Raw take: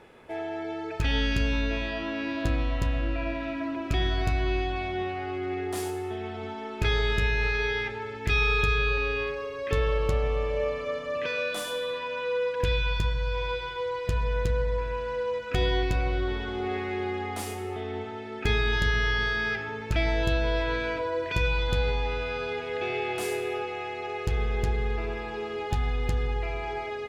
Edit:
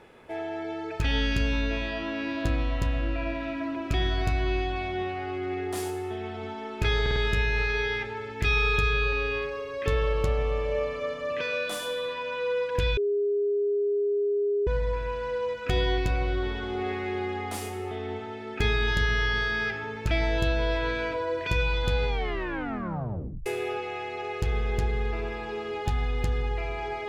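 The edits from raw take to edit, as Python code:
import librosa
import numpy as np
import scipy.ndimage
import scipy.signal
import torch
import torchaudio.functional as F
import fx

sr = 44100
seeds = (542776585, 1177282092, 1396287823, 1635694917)

y = fx.edit(x, sr, fx.stutter(start_s=7.01, slice_s=0.05, count=4),
    fx.bleep(start_s=12.82, length_s=1.7, hz=408.0, db=-22.5),
    fx.tape_stop(start_s=21.93, length_s=1.38), tone=tone)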